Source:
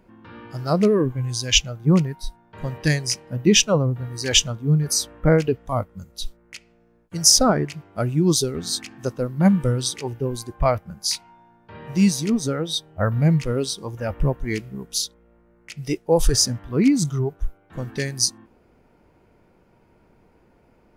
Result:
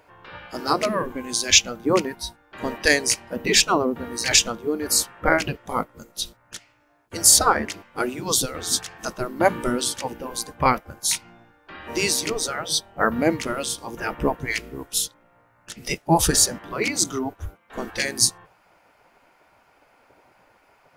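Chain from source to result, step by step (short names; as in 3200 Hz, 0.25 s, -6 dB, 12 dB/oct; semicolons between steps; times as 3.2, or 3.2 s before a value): spectral gate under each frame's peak -10 dB weak; maximiser +9 dB; gain -1 dB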